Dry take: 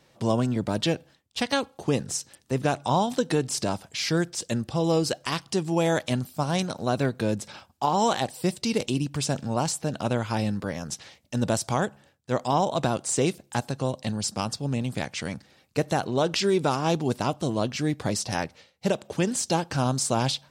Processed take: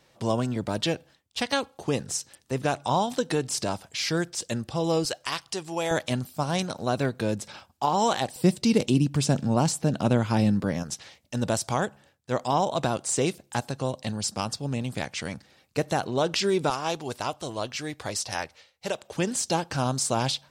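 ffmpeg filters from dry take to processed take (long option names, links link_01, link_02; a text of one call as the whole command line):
ffmpeg -i in.wav -af "asetnsamples=nb_out_samples=441:pad=0,asendcmd='5.05 equalizer g -13;5.91 equalizer g -2;8.36 equalizer g 6;10.83 equalizer g -2.5;16.7 equalizer g -13;19.16 equalizer g -3',equalizer=frequency=190:width_type=o:width=2.2:gain=-3.5" out.wav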